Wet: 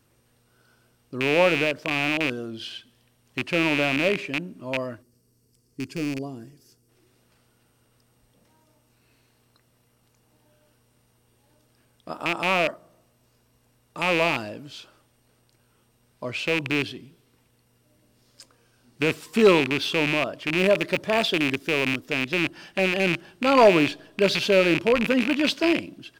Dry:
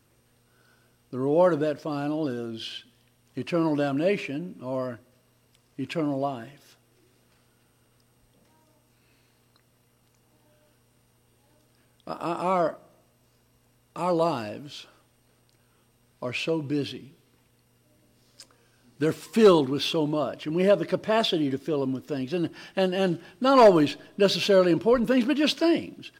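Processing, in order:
loose part that buzzes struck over −33 dBFS, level −13 dBFS
0:05.02–0:06.89: gain on a spectral selection 490–4,300 Hz −13 dB
0:20.57–0:22.00: high-shelf EQ 8,400 Hz +5 dB

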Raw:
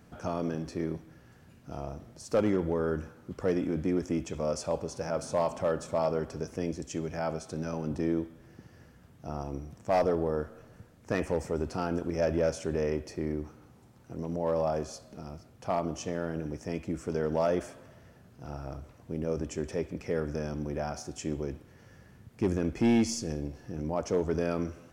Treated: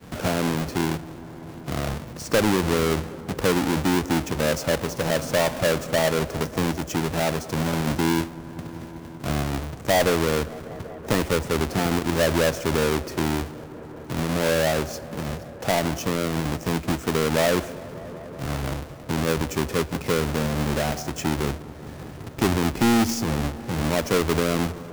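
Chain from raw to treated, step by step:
each half-wave held at its own peak
downward expander −47 dBFS
delay with a low-pass on its return 193 ms, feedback 78%, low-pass 1,400 Hz, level −21 dB
multiband upward and downward compressor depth 40%
level +4 dB

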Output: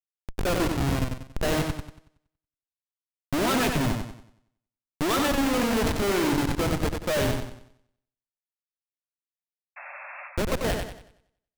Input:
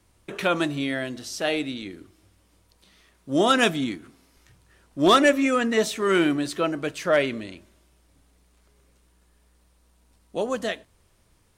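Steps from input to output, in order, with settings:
comparator with hysteresis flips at −23.5 dBFS
sound drawn into the spectrogram noise, 0:09.76–0:10.28, 540–2,700 Hz −44 dBFS
feedback echo with a swinging delay time 93 ms, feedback 38%, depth 56 cents, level −5 dB
level +2 dB

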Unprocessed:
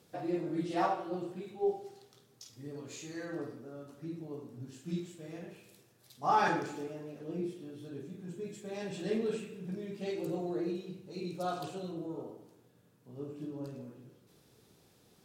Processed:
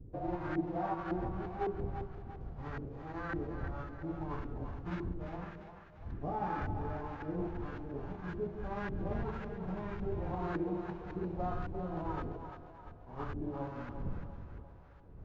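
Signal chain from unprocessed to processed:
spectral envelope flattened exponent 0.3
wind on the microphone 86 Hz −41 dBFS
downward compressor 6 to 1, threshold −35 dBFS, peak gain reduction 12 dB
auto-filter low-pass saw up 1.8 Hz 320–1,600 Hz
echo with a time of its own for lows and highs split 500 Hz, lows 169 ms, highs 346 ms, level −8 dB
level +1 dB
Ogg Vorbis 64 kbit/s 16,000 Hz

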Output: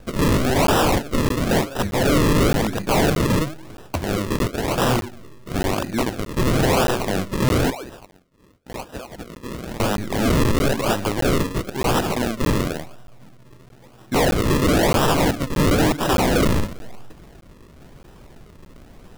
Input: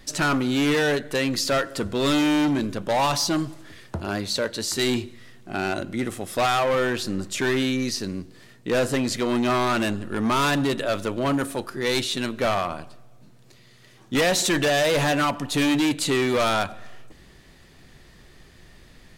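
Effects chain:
0:07.70–0:09.80: resonant band-pass 2,400 Hz, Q 4.2
sample-and-hold swept by an LFO 40×, swing 100% 0.98 Hz
wrap-around overflow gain 19.5 dB
regular buffer underruns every 0.62 s, samples 512, zero, from 0:00.67
level +5.5 dB

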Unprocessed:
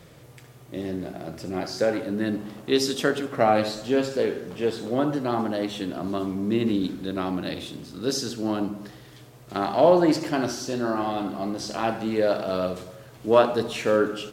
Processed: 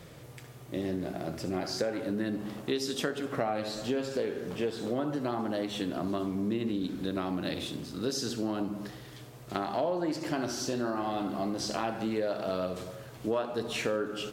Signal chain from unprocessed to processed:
downward compressor 6 to 1, threshold −28 dBFS, peak gain reduction 15.5 dB

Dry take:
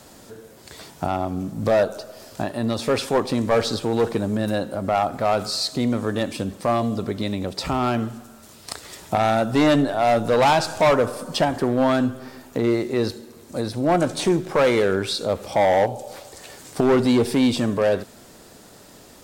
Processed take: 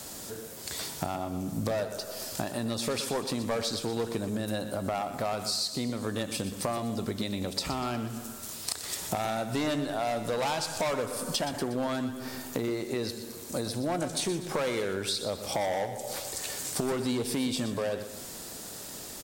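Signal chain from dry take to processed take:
high-shelf EQ 3,900 Hz +11 dB
downward compressor 6 to 1, threshold −29 dBFS, peak gain reduction 15 dB
on a send: repeating echo 122 ms, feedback 44%, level −11.5 dB

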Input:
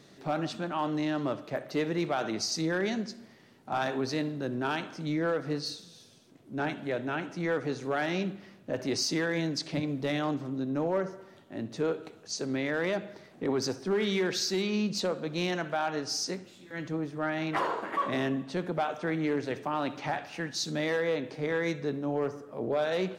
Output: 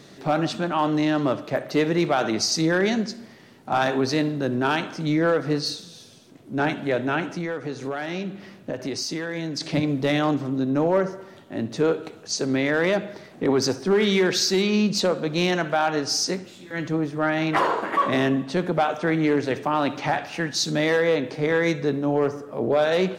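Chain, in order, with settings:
0:07.33–0:09.61: downward compressor, threshold −35 dBFS, peak gain reduction 9.5 dB
level +8.5 dB

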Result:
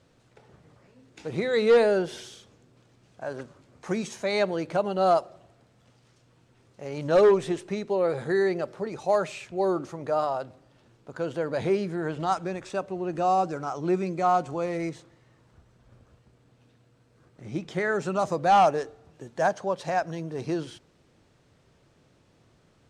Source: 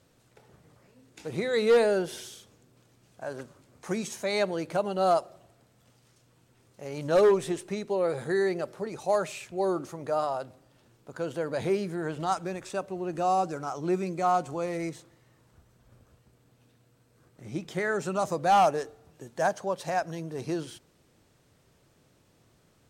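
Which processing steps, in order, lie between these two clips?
high-frequency loss of the air 64 metres
level +2.5 dB

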